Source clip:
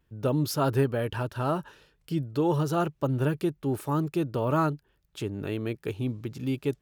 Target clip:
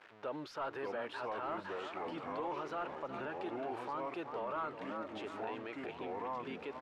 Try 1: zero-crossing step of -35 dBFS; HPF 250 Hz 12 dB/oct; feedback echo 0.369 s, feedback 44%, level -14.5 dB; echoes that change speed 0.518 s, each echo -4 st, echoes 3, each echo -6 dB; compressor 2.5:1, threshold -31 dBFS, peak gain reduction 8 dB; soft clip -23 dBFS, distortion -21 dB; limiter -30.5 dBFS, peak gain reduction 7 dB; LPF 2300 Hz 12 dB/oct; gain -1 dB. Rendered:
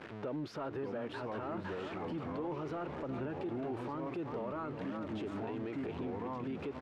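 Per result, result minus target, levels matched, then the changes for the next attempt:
compressor: peak gain reduction +8 dB; 250 Hz band +5.5 dB; zero-crossing step: distortion +7 dB
remove: compressor 2.5:1, threshold -31 dBFS, peak gain reduction 8 dB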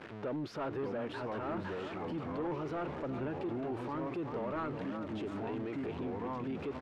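250 Hz band +5.0 dB; zero-crossing step: distortion +7 dB
change: HPF 730 Hz 12 dB/oct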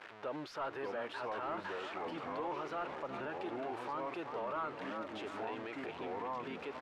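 zero-crossing step: distortion +7 dB
change: zero-crossing step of -42.5 dBFS

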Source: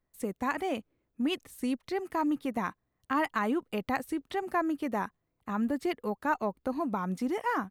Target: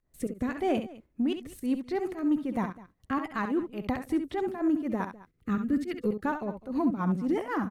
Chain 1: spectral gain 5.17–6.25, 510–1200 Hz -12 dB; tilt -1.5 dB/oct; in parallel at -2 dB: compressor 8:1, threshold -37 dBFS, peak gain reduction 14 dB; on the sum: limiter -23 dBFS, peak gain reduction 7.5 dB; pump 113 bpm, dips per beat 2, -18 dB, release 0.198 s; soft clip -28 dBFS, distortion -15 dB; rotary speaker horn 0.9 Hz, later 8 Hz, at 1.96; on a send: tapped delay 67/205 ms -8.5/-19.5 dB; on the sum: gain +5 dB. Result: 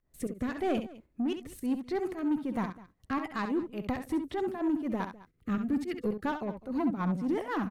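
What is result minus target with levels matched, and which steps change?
soft clip: distortion +15 dB
change: soft clip -18.5 dBFS, distortion -30 dB

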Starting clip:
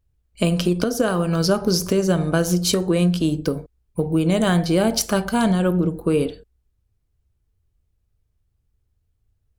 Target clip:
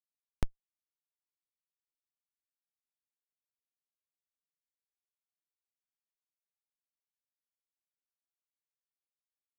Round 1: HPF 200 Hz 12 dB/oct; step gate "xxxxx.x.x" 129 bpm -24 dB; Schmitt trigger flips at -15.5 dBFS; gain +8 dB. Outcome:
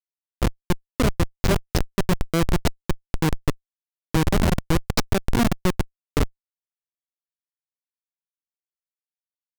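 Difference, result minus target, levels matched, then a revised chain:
Schmitt trigger: distortion -30 dB
HPF 200 Hz 12 dB/oct; step gate "xxxxx.x.x" 129 bpm -24 dB; Schmitt trigger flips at -6.5 dBFS; gain +8 dB

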